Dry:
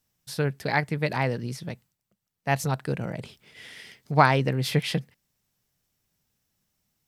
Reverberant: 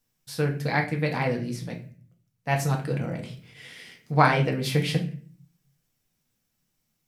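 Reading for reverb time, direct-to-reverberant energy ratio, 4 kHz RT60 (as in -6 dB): 0.45 s, 1.0 dB, 0.35 s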